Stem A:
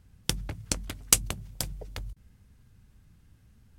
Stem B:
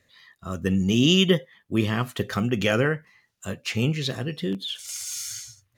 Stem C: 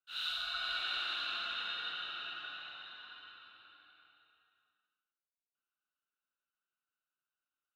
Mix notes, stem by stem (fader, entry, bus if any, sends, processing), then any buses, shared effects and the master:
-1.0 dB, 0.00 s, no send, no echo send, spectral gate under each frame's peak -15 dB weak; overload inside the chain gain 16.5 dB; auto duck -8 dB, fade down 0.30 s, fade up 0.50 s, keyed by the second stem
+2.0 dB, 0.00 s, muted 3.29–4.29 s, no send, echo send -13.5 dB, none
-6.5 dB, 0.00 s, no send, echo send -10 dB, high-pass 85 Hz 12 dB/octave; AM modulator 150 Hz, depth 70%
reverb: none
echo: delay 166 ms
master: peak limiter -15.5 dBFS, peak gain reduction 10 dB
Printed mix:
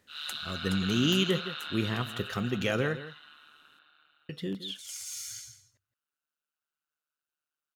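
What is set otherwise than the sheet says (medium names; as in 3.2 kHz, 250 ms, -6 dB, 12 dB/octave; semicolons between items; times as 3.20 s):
stem B +2.0 dB -> -7.0 dB; stem C -6.5 dB -> +3.0 dB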